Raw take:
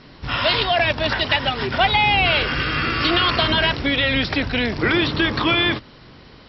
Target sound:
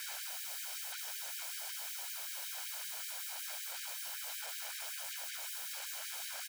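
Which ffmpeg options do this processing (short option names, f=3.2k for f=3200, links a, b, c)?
-filter_complex "[0:a]aecho=1:1:283|566|849:0.0794|0.0302|0.0115,acontrast=76,equalizer=f=1.2k:t=o:w=1.7:g=-2.5,volume=17.5dB,asoftclip=hard,volume=-17.5dB,bandreject=f=60:t=h:w=6,bandreject=f=120:t=h:w=6,bandreject=f=180:t=h:w=6,bandreject=f=240:t=h:w=6,bandreject=f=300:t=h:w=6,bandreject=f=360:t=h:w=6,bandreject=f=420:t=h:w=6,bandreject=f=480:t=h:w=6,acrossover=split=340|2400[a][b][c];[a]acompressor=threshold=-48dB:ratio=4[d];[b]acompressor=threshold=-48dB:ratio=4[e];[c]acompressor=threshold=-43dB:ratio=4[f];[d][e][f]amix=inputs=3:normalize=0,afwtdn=0.00398,asettb=1/sr,asplit=3[g][h][i];[g]atrim=end=0.824[j];[h]atrim=start=0.82:end=3.33,asetpts=PTS-STARTPTS,afade=t=in:d=0.004:c=qsin,afade=t=out:st=2.506:d=0.004:c=qsin,equalizer=f=440:t=o:w=1.6:g=12.5[k];[i]atrim=start=3.326[l];[j][k]acrossfade=d=0.004:c1=hsin:c2=qsin[m];[m][l]acrossfade=d=0.004:c1=qsin:c2=hsin,aeval=exprs='(mod(188*val(0)+1,2)-1)/188':c=same,aecho=1:1:1.3:0.52,afftfilt=real='re*gte(b*sr/1024,430*pow(1600/430,0.5+0.5*sin(2*PI*5.3*pts/sr)))':imag='im*gte(b*sr/1024,430*pow(1600/430,0.5+0.5*sin(2*PI*5.3*pts/sr)))':win_size=1024:overlap=0.75,volume=6.5dB"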